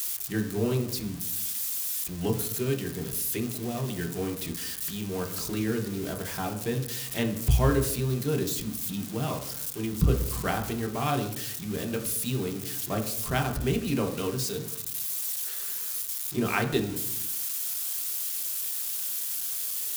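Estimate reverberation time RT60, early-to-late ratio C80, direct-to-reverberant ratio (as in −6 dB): 0.75 s, 12.5 dB, 2.5 dB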